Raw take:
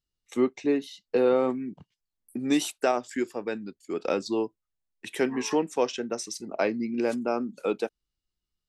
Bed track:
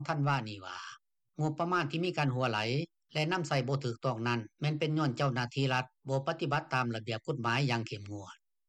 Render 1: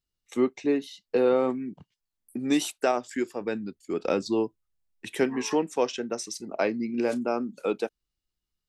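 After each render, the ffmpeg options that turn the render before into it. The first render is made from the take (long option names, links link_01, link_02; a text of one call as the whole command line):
ffmpeg -i in.wav -filter_complex "[0:a]asettb=1/sr,asplit=3[link_01][link_02][link_03];[link_01]atrim=end=3.414[link_04];[link_02]atrim=start=3.41:end=5.24,asetpts=PTS-STARTPTS,afade=type=in:duration=0.004:curve=qsin,afade=type=out:start_time=1.826:duration=0.004:curve=qsin,lowshelf=frequency=190:gain=8[link_05];[link_03]atrim=start=5.236[link_06];[link_04][link_05]acrossfade=duration=0.004:curve1=hsin:curve2=qsin[link_07];[link_07][link_06]acrossfade=duration=0.004:curve1=qsin:curve2=hsin,asettb=1/sr,asplit=3[link_08][link_09][link_10];[link_08]atrim=end=6.864[link_11];[link_09]atrim=start=6.86:end=7.28,asetpts=PTS-STARTPTS,afade=type=in:duration=0.004:curve=qsin,afade=type=out:start_time=0.416:duration=0.004:curve=qsin,asplit=2[link_12][link_13];[link_13]adelay=33,volume=-13dB[link_14];[link_12][link_14]amix=inputs=2:normalize=0,atrim=end_sample=18522[link_15];[link_10]atrim=start=7.276[link_16];[link_11][link_15]acrossfade=duration=0.004:curve1=hsin:curve2=qsin[link_17];[link_17][link_16]acrossfade=duration=0.004:curve1=qsin:curve2=hsin" out.wav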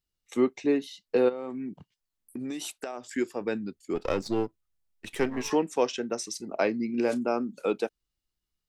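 ffmpeg -i in.wav -filter_complex "[0:a]asplit=3[link_01][link_02][link_03];[link_01]afade=type=out:start_time=1.28:duration=0.02[link_04];[link_02]acompressor=threshold=-31dB:ratio=12:attack=3.2:release=140:knee=1:detection=peak,afade=type=in:start_time=1.28:duration=0.02,afade=type=out:start_time=3.13:duration=0.02[link_05];[link_03]afade=type=in:start_time=3.13:duration=0.02[link_06];[link_04][link_05][link_06]amix=inputs=3:normalize=0,asettb=1/sr,asplit=3[link_07][link_08][link_09];[link_07]atrim=end=3.954[link_10];[link_08]atrim=start=3.95:end=5.5,asetpts=PTS-STARTPTS,afade=type=in:duration=0.004:curve=qsin,afade=type=out:start_time=1.546:duration=0.004:curve=qsin,aeval=exprs='if(lt(val(0),0),0.447*val(0),val(0))':channel_layout=same[link_11];[link_09]atrim=start=5.496[link_12];[link_10][link_11]acrossfade=duration=0.004:curve1=hsin:curve2=qsin[link_13];[link_13][link_12]acrossfade=duration=0.004:curve1=qsin:curve2=hsin" out.wav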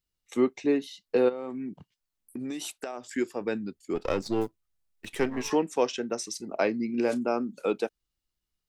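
ffmpeg -i in.wav -filter_complex "[0:a]asettb=1/sr,asplit=3[link_01][link_02][link_03];[link_01]atrim=end=4.414[link_04];[link_02]atrim=start=4.41:end=5.09,asetpts=PTS-STARTPTS,afade=type=in:duration=0.004:curve=qsin,afade=type=out:start_time=0.676:duration=0.004:curve=qsin,acrusher=bits=6:mode=log:mix=0:aa=0.000001[link_05];[link_03]atrim=start=5.086[link_06];[link_04][link_05]acrossfade=duration=0.004:curve1=hsin:curve2=qsin[link_07];[link_07][link_06]acrossfade=duration=0.004:curve1=qsin:curve2=hsin" out.wav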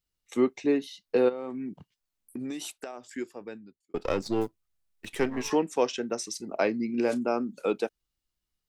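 ffmpeg -i in.wav -filter_complex "[0:a]asettb=1/sr,asplit=3[link_01][link_02][link_03];[link_01]atrim=end=0.714[link_04];[link_02]atrim=start=0.71:end=1.7,asetpts=PTS-STARTPTS,afade=type=in:duration=0.004:curve=qsin,afade=type=out:start_time=0.986:duration=0.004:curve=qsin,bandreject=frequency=7400:width=13[link_05];[link_03]atrim=start=1.696[link_06];[link_04][link_05]acrossfade=duration=0.004:curve1=hsin:curve2=qsin[link_07];[link_07][link_06]acrossfade=duration=0.004:curve1=qsin:curve2=hsin,asplit=2[link_08][link_09];[link_08]atrim=end=3.94,asetpts=PTS-STARTPTS,afade=type=out:start_time=2.42:duration=1.52[link_10];[link_09]atrim=start=3.94,asetpts=PTS-STARTPTS,afade=type=in:duration=0.004:curve=hsin[link_11];[link_10][link_11]concat=n=2:v=0:a=1" out.wav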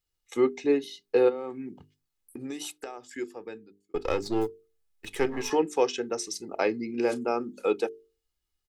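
ffmpeg -i in.wav -af "bandreject=frequency=50:width_type=h:width=6,bandreject=frequency=100:width_type=h:width=6,bandreject=frequency=150:width_type=h:width=6,bandreject=frequency=200:width_type=h:width=6,bandreject=frequency=250:width_type=h:width=6,bandreject=frequency=300:width_type=h:width=6,bandreject=frequency=350:width_type=h:width=6,bandreject=frequency=400:width_type=h:width=6,bandreject=frequency=450:width_type=h:width=6,aecho=1:1:2.4:0.42" out.wav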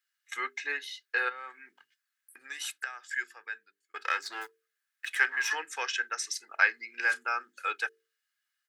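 ffmpeg -i in.wav -af "highpass=frequency=1600:width_type=q:width=6.4" out.wav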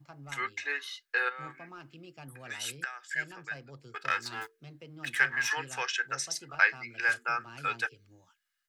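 ffmpeg -i in.wav -i bed.wav -filter_complex "[1:a]volume=-17.5dB[link_01];[0:a][link_01]amix=inputs=2:normalize=0" out.wav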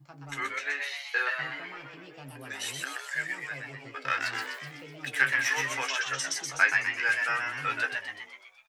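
ffmpeg -i in.wav -filter_complex "[0:a]asplit=2[link_01][link_02];[link_02]adelay=15,volume=-7.5dB[link_03];[link_01][link_03]amix=inputs=2:normalize=0,asplit=9[link_04][link_05][link_06][link_07][link_08][link_09][link_10][link_11][link_12];[link_05]adelay=125,afreqshift=140,volume=-4dB[link_13];[link_06]adelay=250,afreqshift=280,volume=-8.9dB[link_14];[link_07]adelay=375,afreqshift=420,volume=-13.8dB[link_15];[link_08]adelay=500,afreqshift=560,volume=-18.6dB[link_16];[link_09]adelay=625,afreqshift=700,volume=-23.5dB[link_17];[link_10]adelay=750,afreqshift=840,volume=-28.4dB[link_18];[link_11]adelay=875,afreqshift=980,volume=-33.3dB[link_19];[link_12]adelay=1000,afreqshift=1120,volume=-38.2dB[link_20];[link_04][link_13][link_14][link_15][link_16][link_17][link_18][link_19][link_20]amix=inputs=9:normalize=0" out.wav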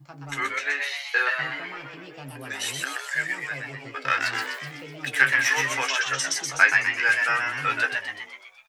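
ffmpeg -i in.wav -af "volume=5.5dB" out.wav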